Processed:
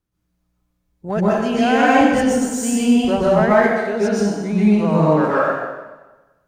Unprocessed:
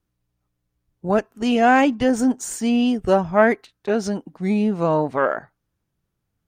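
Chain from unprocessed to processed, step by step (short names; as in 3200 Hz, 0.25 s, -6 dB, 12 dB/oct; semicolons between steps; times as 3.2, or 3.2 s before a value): in parallel at -9 dB: hard clip -18 dBFS, distortion -8 dB; on the sum: plate-style reverb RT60 1.2 s, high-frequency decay 0.9×, pre-delay 0.11 s, DRR -7.5 dB; gain -6 dB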